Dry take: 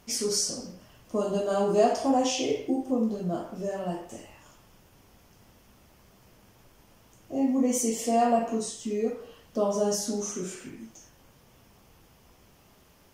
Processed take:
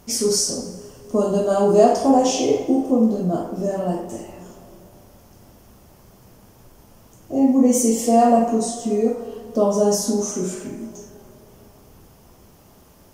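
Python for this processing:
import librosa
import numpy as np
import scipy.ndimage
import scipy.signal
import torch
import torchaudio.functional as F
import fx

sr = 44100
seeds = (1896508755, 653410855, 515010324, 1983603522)

y = fx.peak_eq(x, sr, hz=2500.0, db=-8.0, octaves=2.0)
y = fx.doubler(y, sr, ms=49.0, db=-13.0)
y = fx.rev_plate(y, sr, seeds[0], rt60_s=3.6, hf_ratio=0.45, predelay_ms=0, drr_db=13.0)
y = y * 10.0 ** (9.0 / 20.0)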